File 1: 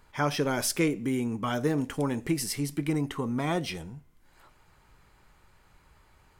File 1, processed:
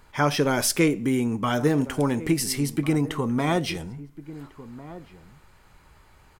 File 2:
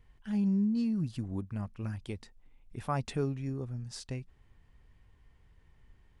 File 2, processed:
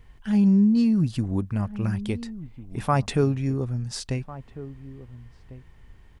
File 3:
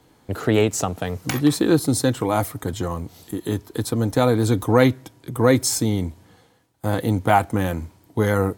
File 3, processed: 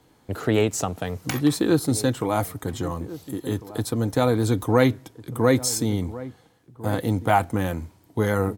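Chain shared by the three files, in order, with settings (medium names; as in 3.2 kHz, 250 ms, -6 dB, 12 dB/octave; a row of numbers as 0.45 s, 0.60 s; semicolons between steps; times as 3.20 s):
echo from a far wall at 240 m, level -16 dB; normalise loudness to -24 LUFS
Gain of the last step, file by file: +5.5 dB, +10.5 dB, -2.5 dB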